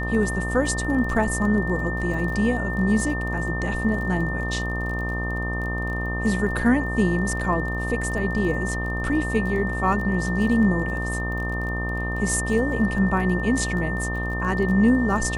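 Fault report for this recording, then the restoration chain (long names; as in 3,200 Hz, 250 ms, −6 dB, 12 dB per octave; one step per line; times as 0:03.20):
mains buzz 60 Hz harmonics 21 −28 dBFS
surface crackle 24 per second −32 dBFS
whistle 1,800 Hz −29 dBFS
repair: click removal
notch filter 1,800 Hz, Q 30
hum removal 60 Hz, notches 21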